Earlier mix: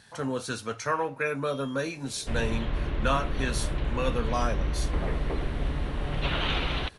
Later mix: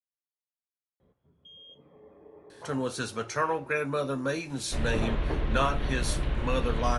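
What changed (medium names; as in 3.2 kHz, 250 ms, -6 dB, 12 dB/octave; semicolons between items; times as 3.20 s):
speech: entry +2.50 s; second sound: entry +2.45 s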